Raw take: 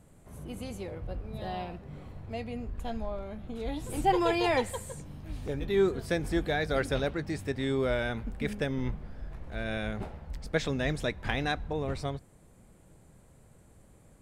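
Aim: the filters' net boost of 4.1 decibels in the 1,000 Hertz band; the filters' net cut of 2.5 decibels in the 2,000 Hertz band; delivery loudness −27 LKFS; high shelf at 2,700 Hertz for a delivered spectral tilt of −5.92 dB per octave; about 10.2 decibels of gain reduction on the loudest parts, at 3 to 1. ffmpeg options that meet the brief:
ffmpeg -i in.wav -af "equalizer=frequency=1000:width_type=o:gain=7.5,equalizer=frequency=2000:width_type=o:gain=-3,highshelf=frequency=2700:gain=-8,acompressor=threshold=-30dB:ratio=3,volume=9dB" out.wav

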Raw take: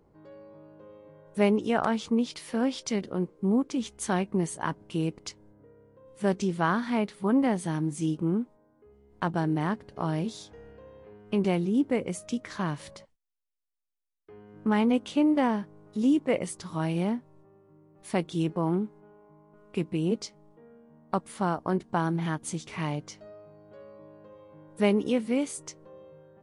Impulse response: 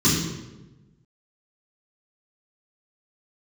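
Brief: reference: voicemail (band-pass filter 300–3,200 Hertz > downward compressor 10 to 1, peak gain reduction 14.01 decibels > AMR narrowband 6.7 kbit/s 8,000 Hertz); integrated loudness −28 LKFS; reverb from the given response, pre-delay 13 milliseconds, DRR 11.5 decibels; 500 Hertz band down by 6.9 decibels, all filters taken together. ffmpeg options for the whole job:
-filter_complex "[0:a]equalizer=frequency=500:width_type=o:gain=-8,asplit=2[link_01][link_02];[1:a]atrim=start_sample=2205,adelay=13[link_03];[link_02][link_03]afir=irnorm=-1:irlink=0,volume=-28dB[link_04];[link_01][link_04]amix=inputs=2:normalize=0,highpass=300,lowpass=3200,acompressor=threshold=-32dB:ratio=10,volume=10.5dB" -ar 8000 -c:a libopencore_amrnb -b:a 6700

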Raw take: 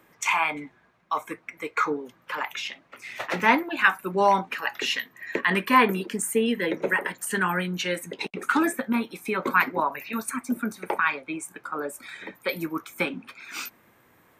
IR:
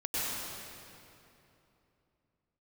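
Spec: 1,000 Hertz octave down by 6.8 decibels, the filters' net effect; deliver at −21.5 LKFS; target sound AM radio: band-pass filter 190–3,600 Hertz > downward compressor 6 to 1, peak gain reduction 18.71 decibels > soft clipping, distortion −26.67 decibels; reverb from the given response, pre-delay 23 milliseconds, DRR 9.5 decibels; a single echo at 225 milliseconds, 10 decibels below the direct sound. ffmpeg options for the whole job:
-filter_complex "[0:a]equalizer=frequency=1000:width_type=o:gain=-8,aecho=1:1:225:0.316,asplit=2[link_01][link_02];[1:a]atrim=start_sample=2205,adelay=23[link_03];[link_02][link_03]afir=irnorm=-1:irlink=0,volume=-17dB[link_04];[link_01][link_04]amix=inputs=2:normalize=0,highpass=190,lowpass=3600,acompressor=threshold=-37dB:ratio=6,asoftclip=threshold=-26dB,volume=19dB"

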